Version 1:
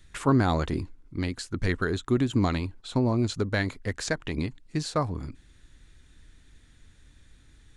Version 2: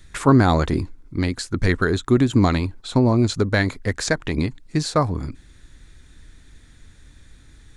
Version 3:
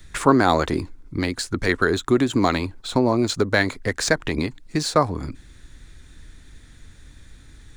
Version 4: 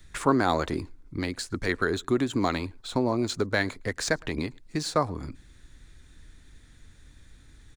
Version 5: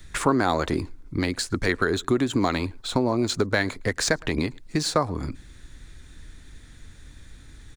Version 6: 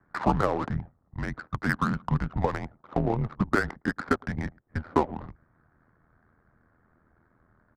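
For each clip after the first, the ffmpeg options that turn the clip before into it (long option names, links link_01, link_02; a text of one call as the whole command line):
ffmpeg -i in.wav -af "equalizer=frequency=2900:width_type=o:width=0.3:gain=-4.5,volume=7.5dB" out.wav
ffmpeg -i in.wav -filter_complex "[0:a]acrossover=split=270|4500[link_01][link_02][link_03];[link_01]acompressor=threshold=-29dB:ratio=6[link_04];[link_03]acrusher=bits=3:mode=log:mix=0:aa=0.000001[link_05];[link_04][link_02][link_05]amix=inputs=3:normalize=0,volume=2dB" out.wav
ffmpeg -i in.wav -filter_complex "[0:a]asplit=2[link_01][link_02];[link_02]adelay=110.8,volume=-29dB,highshelf=frequency=4000:gain=-2.49[link_03];[link_01][link_03]amix=inputs=2:normalize=0,volume=-6.5dB" out.wav
ffmpeg -i in.wav -af "acompressor=threshold=-27dB:ratio=2,volume=6.5dB" out.wav
ffmpeg -i in.wav -af "highpass=frequency=340:width_type=q:width=0.5412,highpass=frequency=340:width_type=q:width=1.307,lowpass=frequency=2100:width_type=q:width=0.5176,lowpass=frequency=2100:width_type=q:width=0.7071,lowpass=frequency=2100:width_type=q:width=1.932,afreqshift=-220,tremolo=f=81:d=0.667,adynamicsmooth=sensitivity=6.5:basefreq=920,volume=3dB" out.wav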